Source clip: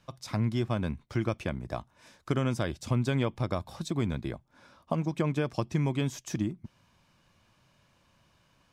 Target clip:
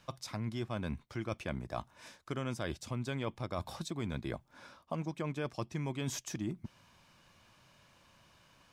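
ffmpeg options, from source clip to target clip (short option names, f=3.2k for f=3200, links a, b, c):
-af "lowshelf=f=410:g=-5,areverse,acompressor=threshold=-38dB:ratio=6,areverse,volume=4dB"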